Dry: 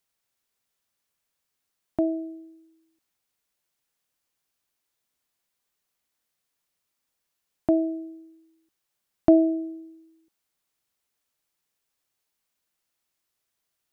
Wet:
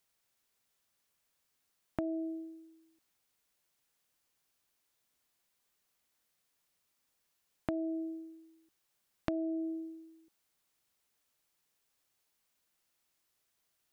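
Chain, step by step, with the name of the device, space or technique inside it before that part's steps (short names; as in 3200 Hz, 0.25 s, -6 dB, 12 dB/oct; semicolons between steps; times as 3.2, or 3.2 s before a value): serial compression, leveller first (compressor 2:1, threshold -26 dBFS, peak gain reduction 8 dB; compressor 4:1, threshold -35 dBFS, peak gain reduction 13.5 dB); gain +1 dB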